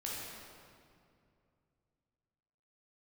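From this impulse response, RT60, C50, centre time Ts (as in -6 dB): 2.4 s, -3.0 dB, 140 ms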